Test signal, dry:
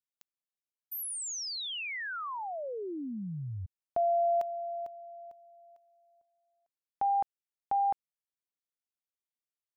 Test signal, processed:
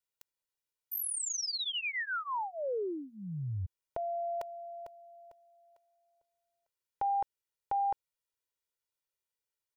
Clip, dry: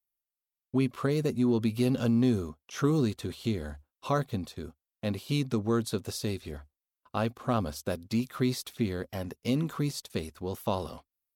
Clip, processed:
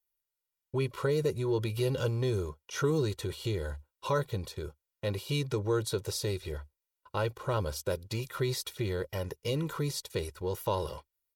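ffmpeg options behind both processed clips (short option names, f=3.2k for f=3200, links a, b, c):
-filter_complex "[0:a]aecho=1:1:2.1:0.93,asplit=2[a][b];[b]acompressor=threshold=-33dB:ratio=6:attack=6.3:release=22:knee=6,volume=0dB[c];[a][c]amix=inputs=2:normalize=0,volume=-6dB"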